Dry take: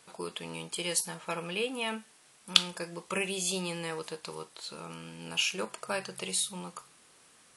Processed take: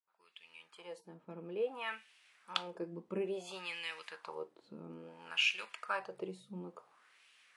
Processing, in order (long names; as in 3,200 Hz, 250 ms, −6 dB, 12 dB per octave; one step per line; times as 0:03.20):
fade in at the beginning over 2.18 s
LFO wah 0.58 Hz 240–2,700 Hz, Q 2.2
level +3 dB